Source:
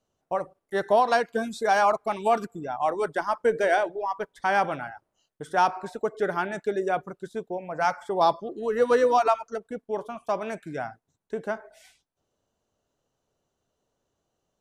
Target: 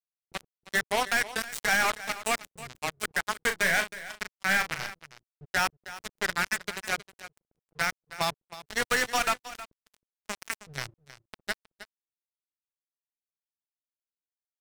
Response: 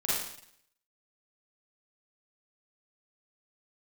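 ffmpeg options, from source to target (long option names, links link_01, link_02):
-filter_complex "[0:a]equalizer=frequency=125:width_type=o:width=1:gain=6,equalizer=frequency=250:width_type=o:width=1:gain=-11,equalizer=frequency=500:width_type=o:width=1:gain=-12,equalizer=frequency=1000:width_type=o:width=1:gain=-11,equalizer=frequency=2000:width_type=o:width=1:gain=12,equalizer=frequency=4000:width_type=o:width=1:gain=-6,equalizer=frequency=8000:width_type=o:width=1:gain=11,aeval=exprs='0.316*(cos(1*acos(clip(val(0)/0.316,-1,1)))-cos(1*PI/2))+0.112*(cos(2*acos(clip(val(0)/0.316,-1,1)))-cos(2*PI/2))+0.02*(cos(7*acos(clip(val(0)/0.316,-1,1)))-cos(7*PI/2))':channel_layout=same,acrossover=split=130[link_01][link_02];[link_02]acrusher=bits=4:mix=0:aa=0.5[link_03];[link_01][link_03]amix=inputs=2:normalize=0,aeval=exprs='sgn(val(0))*max(abs(val(0))-0.00106,0)':channel_layout=same,asplit=2[link_04][link_05];[link_05]acompressor=threshold=-41dB:ratio=6,volume=1dB[link_06];[link_04][link_06]amix=inputs=2:normalize=0,alimiter=limit=-19.5dB:level=0:latency=1:release=28,aecho=1:1:316:0.126,asoftclip=type=tanh:threshold=-24.5dB,asettb=1/sr,asplit=3[link_07][link_08][link_09];[link_07]atrim=end=3.424[link_10];[link_08]atrim=start=3.42:end=4.91,asetpts=PTS-STARTPTS,afade=type=in:duration=0.004:curve=qsin,afade=type=out:start_time=1.486:duration=0.004:curve=qsin,asplit=2[link_11][link_12];[link_12]adelay=37,volume=-8dB[link_13];[link_11][link_13]amix=inputs=2:normalize=0,atrim=end_sample=65709[link_14];[link_09]atrim=start=4.906[link_15];[link_10][link_14]acrossfade=duration=0.004:curve1=hsin:curve2=qsin[link_16];[link_16][link_15]acrossfade=duration=0.004:curve1=qsin:curve2=hsin,volume=8.5dB"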